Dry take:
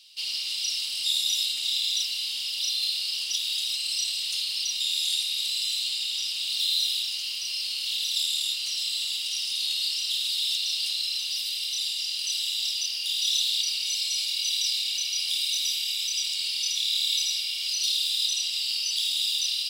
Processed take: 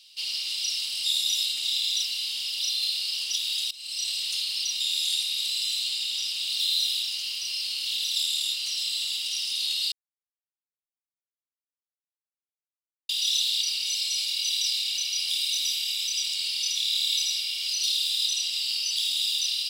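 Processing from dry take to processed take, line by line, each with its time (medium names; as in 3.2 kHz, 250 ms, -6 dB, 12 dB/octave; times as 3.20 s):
3.71–4.11 s: fade in, from -21.5 dB
9.92–13.09 s: mute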